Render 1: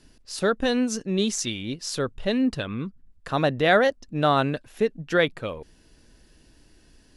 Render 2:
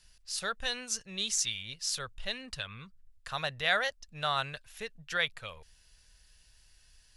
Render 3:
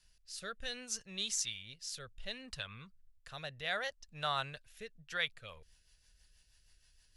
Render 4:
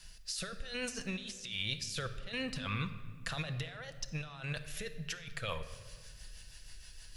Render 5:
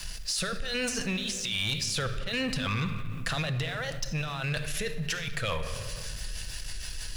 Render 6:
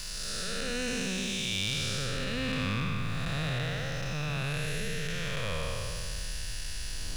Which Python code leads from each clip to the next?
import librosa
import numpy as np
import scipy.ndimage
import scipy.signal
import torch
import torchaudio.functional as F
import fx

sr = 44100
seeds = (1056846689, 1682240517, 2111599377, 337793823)

y1 = fx.tone_stack(x, sr, knobs='10-0-10')
y2 = fx.rotary_switch(y1, sr, hz=0.65, then_hz=6.3, switch_at_s=4.9)
y2 = y2 * 10.0 ** (-4.0 / 20.0)
y3 = fx.over_compress(y2, sr, threshold_db=-50.0, ratio=-1.0)
y3 = fx.room_shoebox(y3, sr, seeds[0], volume_m3=1900.0, walls='mixed', distance_m=0.7)
y3 = y3 * 10.0 ** (8.0 / 20.0)
y4 = fx.leveller(y3, sr, passes=2)
y4 = fx.env_flatten(y4, sr, amount_pct=50)
y5 = fx.spec_blur(y4, sr, span_ms=422.0)
y5 = y5 * 10.0 ** (2.5 / 20.0)